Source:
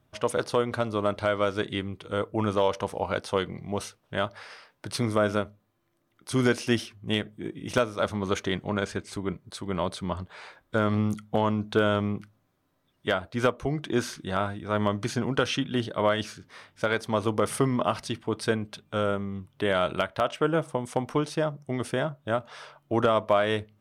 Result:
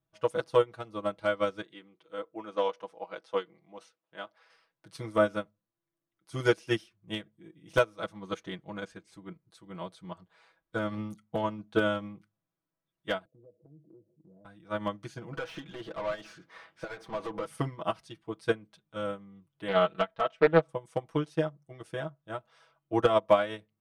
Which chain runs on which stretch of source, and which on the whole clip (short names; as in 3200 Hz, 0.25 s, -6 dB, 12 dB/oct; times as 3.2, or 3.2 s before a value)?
1.62–4.5 HPF 300 Hz + air absorption 57 m
13.25–14.45 Chebyshev band-pass 100–580 Hz, order 4 + compressor 3:1, threshold -38 dBFS
15.33–17.46 compressor, threshold -30 dBFS + overdrive pedal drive 27 dB, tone 1400 Hz, clips at -16.5 dBFS
19.68–20.69 air absorption 110 m + comb 4.5 ms, depth 50% + Doppler distortion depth 0.27 ms
whole clip: comb 6.1 ms, depth 93%; upward expander 2.5:1, over -29 dBFS